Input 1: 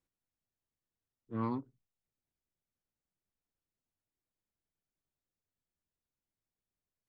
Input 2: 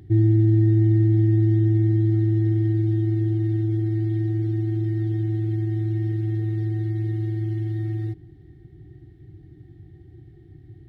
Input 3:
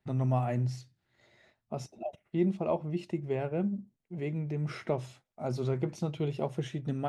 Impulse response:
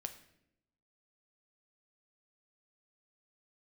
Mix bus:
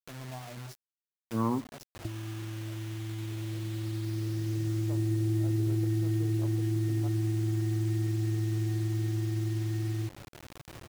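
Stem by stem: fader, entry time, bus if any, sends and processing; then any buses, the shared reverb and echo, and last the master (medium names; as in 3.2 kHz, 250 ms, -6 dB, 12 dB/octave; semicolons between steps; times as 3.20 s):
+2.0 dB, 0.00 s, send -6.5 dB, low-pass 1.7 kHz 24 dB/octave; crossover distortion -56.5 dBFS
-6.5 dB, 1.95 s, no send, tone controls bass -1 dB, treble -13 dB
-18.5 dB, 0.00 s, send -10.5 dB, self-modulated delay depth 0.14 ms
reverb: on, RT60 0.80 s, pre-delay 5 ms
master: compressor with a negative ratio -29 dBFS, ratio -0.5; word length cut 8-bit, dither none; tape noise reduction on one side only encoder only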